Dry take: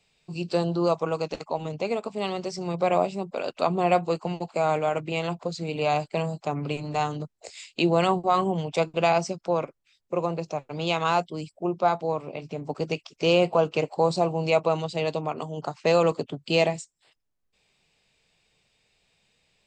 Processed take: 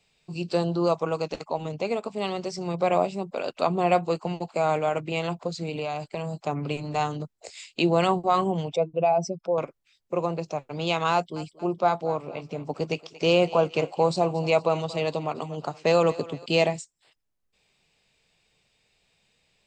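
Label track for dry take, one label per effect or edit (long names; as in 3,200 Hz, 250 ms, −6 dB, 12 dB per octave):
5.650000	6.470000	downward compressor, threshold −26 dBFS
8.730000	9.580000	expanding power law on the bin magnitudes exponent 1.8
11.130000	16.460000	feedback echo with a high-pass in the loop 231 ms, feedback 51%, level −17 dB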